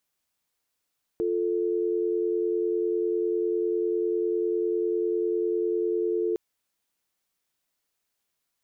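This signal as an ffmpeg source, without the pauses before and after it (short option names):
-f lavfi -i "aevalsrc='0.0501*(sin(2*PI*350*t)+sin(2*PI*440*t))':d=5.16:s=44100"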